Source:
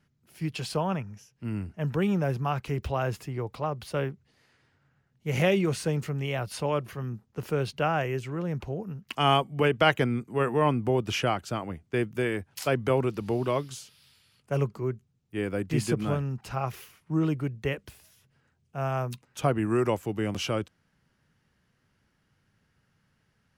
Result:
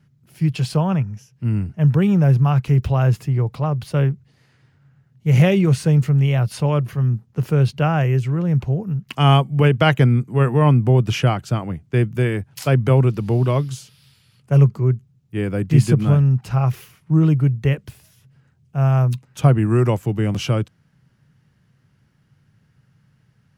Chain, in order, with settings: peaking EQ 130 Hz +13 dB 1.1 oct; trim +4 dB

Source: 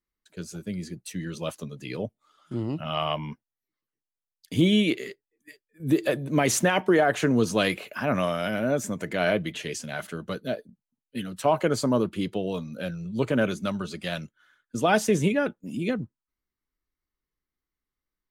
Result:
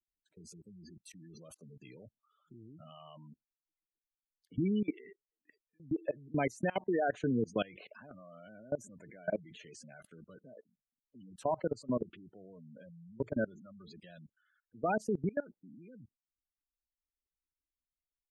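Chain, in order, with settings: spectral gate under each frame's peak -15 dB strong; level held to a coarse grid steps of 23 dB; trim -7 dB

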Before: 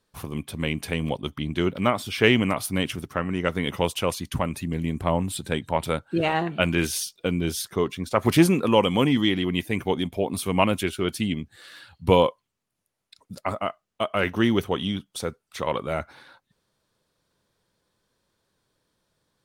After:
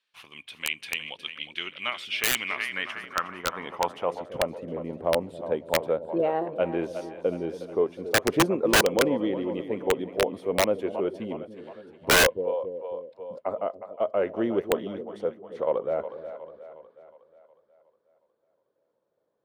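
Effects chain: two-band feedback delay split 500 Hz, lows 276 ms, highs 363 ms, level -11 dB; band-pass sweep 2.7 kHz -> 520 Hz, 2.23–4.55 s; integer overflow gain 17 dB; trim +4 dB

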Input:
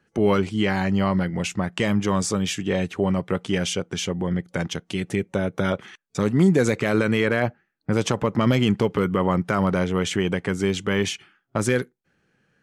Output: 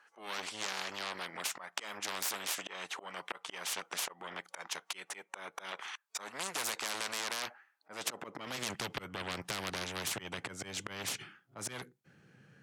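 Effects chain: slow attack 285 ms; Chebyshev shaper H 4 -10 dB, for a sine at -8 dBFS; high-pass sweep 970 Hz -> 120 Hz, 7.71–8.88 s; spectrum-flattening compressor 4:1; trim -6.5 dB

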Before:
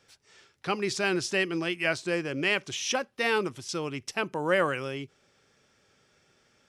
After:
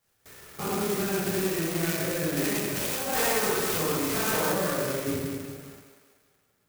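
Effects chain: spectrogram pixelated in time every 200 ms; compression 5:1, threshold -42 dBFS, peak gain reduction 15 dB; simulated room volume 670 m³, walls mixed, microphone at 6 m; gate with hold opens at -40 dBFS; thinning echo 189 ms, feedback 56%, high-pass 350 Hz, level -8 dB; 3.13–4.54 s: overdrive pedal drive 12 dB, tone 6.1 kHz, clips at -18 dBFS; sampling jitter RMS 0.089 ms; trim +2.5 dB

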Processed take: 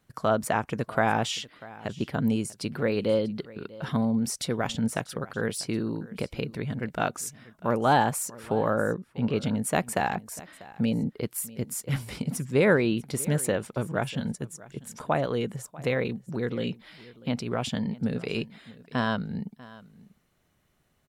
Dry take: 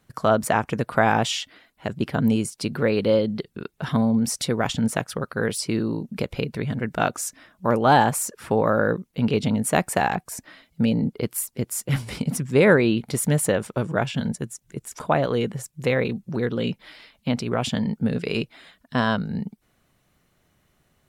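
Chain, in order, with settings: 8.74–9.36 s: treble shelf 4.4 kHz -11 dB; delay 643 ms -20 dB; trim -5 dB

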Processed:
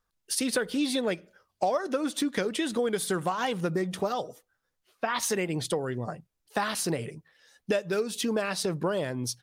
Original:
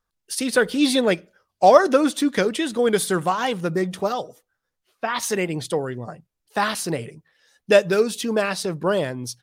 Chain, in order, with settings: compression 6:1, threshold -25 dBFS, peak gain reduction 17 dB

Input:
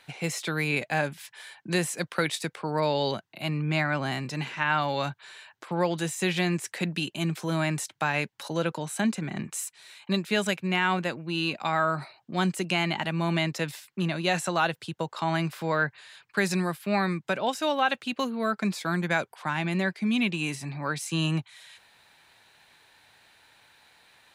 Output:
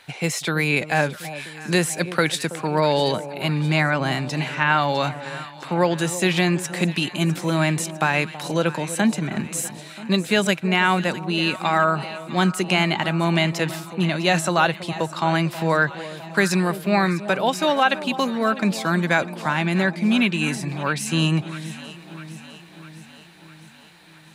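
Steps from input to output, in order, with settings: echo whose repeats swap between lows and highs 327 ms, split 920 Hz, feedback 76%, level -13 dB; trim +6.5 dB

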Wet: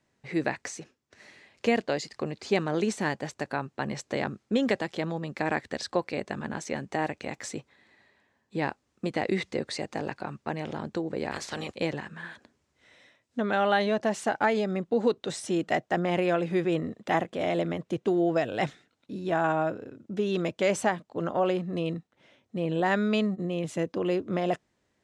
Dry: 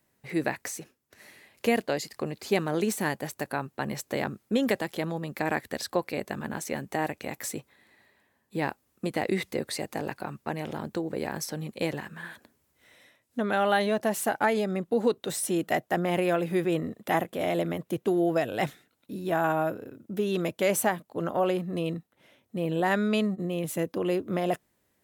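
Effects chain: 11.31–11.74 s: spectral peaks clipped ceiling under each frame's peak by 22 dB; low-pass 7.2 kHz 24 dB/octave

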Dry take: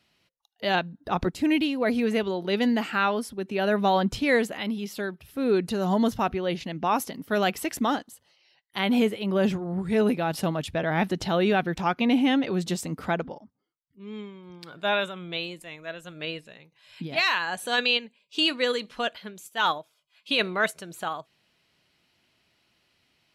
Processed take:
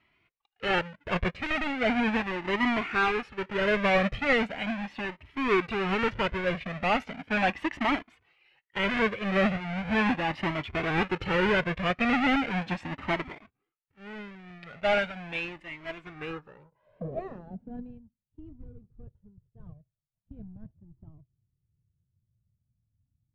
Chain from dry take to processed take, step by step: square wave that keeps the level; low-pass sweep 2.3 kHz -> 110 Hz, 16.06–18.08 s; Shepard-style flanger rising 0.38 Hz; trim -2.5 dB

